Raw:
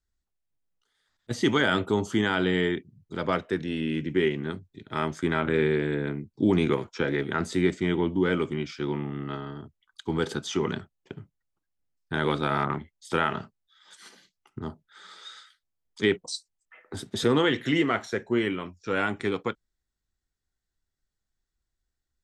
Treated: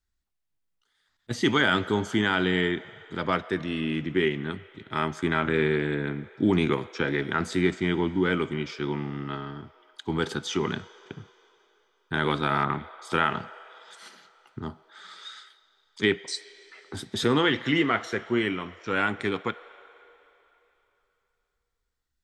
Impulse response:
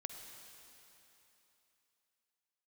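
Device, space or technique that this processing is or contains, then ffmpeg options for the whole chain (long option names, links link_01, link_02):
filtered reverb send: -filter_complex "[0:a]asplit=2[link_01][link_02];[link_02]highpass=frequency=490:width=0.5412,highpass=frequency=490:width=1.3066,lowpass=5400[link_03];[1:a]atrim=start_sample=2205[link_04];[link_03][link_04]afir=irnorm=-1:irlink=0,volume=-5.5dB[link_05];[link_01][link_05]amix=inputs=2:normalize=0,asettb=1/sr,asplit=3[link_06][link_07][link_08];[link_06]atrim=end=17.404[link_09];[link_07]atrim=start=17.4:end=18.03,asetpts=PTS-STARTPTS,afade=type=in:duration=0.004:curve=qsin,afade=type=out:start_time=0.626:duration=0.004:curve=qsin,lowpass=6400[link_10];[link_08]atrim=start=18.026[link_11];[link_09][link_10]acrossfade=duration=0.004:curve1=hsin:curve2=qsin[link_12];[link_12][link_11]acrossfade=duration=0.004:curve1=qsin:curve2=hsin"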